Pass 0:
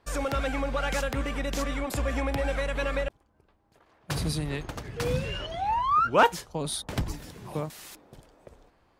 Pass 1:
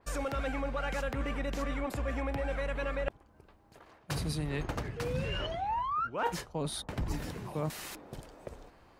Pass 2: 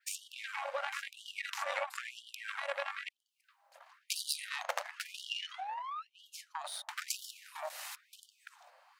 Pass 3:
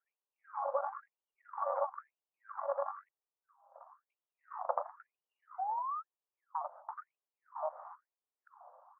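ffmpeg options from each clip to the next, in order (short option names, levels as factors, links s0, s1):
-af "bandreject=f=3400:w=27,areverse,acompressor=threshold=0.0158:ratio=8,areverse,adynamicequalizer=threshold=0.00126:dfrequency=3200:dqfactor=0.7:tfrequency=3200:tqfactor=0.7:attack=5:release=100:ratio=0.375:range=4:mode=cutabove:tftype=highshelf,volume=1.88"
-filter_complex "[0:a]acrossover=split=280[s0][s1];[s1]acompressor=threshold=0.01:ratio=10[s2];[s0][s2]amix=inputs=2:normalize=0,aeval=exprs='0.0668*(cos(1*acos(clip(val(0)/0.0668,-1,1)))-cos(1*PI/2))+0.0188*(cos(3*acos(clip(val(0)/0.0668,-1,1)))-cos(3*PI/2))':c=same,afftfilt=real='re*gte(b*sr/1024,490*pow(2900/490,0.5+0.5*sin(2*PI*1*pts/sr)))':imag='im*gte(b*sr/1024,490*pow(2900/490,0.5+0.5*sin(2*PI*1*pts/sr)))':win_size=1024:overlap=0.75,volume=5.96"
-af "asuperpass=centerf=650:order=12:qfactor=0.74,volume=1.68"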